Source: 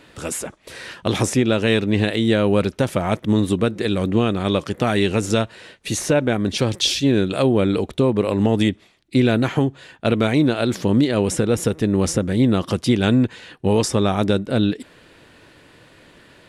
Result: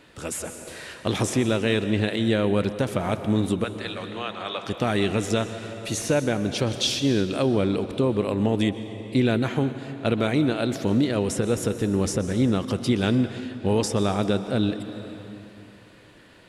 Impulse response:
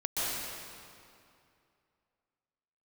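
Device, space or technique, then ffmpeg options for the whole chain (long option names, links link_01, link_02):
compressed reverb return: -filter_complex "[0:a]asettb=1/sr,asplit=3[link_01][link_02][link_03];[link_01]atrim=end=3.644[link_04];[link_02]atrim=start=3.64:end=4.64,asetpts=PTS-STARTPTS,afade=type=in:duration=0.004:curve=qsin,afade=type=out:start_time=0.996:duration=0.004:curve=qsin,acrossover=split=600 6500:gain=0.0708 1 0.2[link_05][link_06][link_07];[link_05][link_06][link_07]amix=inputs=3:normalize=0[link_08];[link_03]atrim=start=4.636[link_09];[link_04][link_08]acrossfade=duration=0.004:curve1=hsin:curve2=qsin[link_10];[link_10][link_09]acrossfade=duration=0.004:curve1=qsin:curve2=hsin,asplit=2[link_11][link_12];[1:a]atrim=start_sample=2205[link_13];[link_12][link_13]afir=irnorm=-1:irlink=0,acompressor=threshold=-12dB:ratio=5,volume=-12.5dB[link_14];[link_11][link_14]amix=inputs=2:normalize=0,volume=-6dB"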